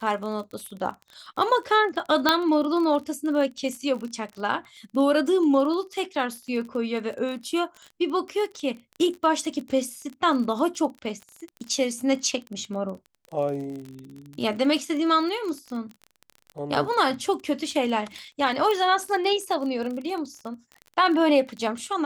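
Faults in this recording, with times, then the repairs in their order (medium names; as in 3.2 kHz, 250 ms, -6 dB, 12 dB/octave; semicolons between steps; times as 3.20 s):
crackle 29 per s -32 dBFS
2.29 s: pop -4 dBFS
18.71 s: pop -14 dBFS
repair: de-click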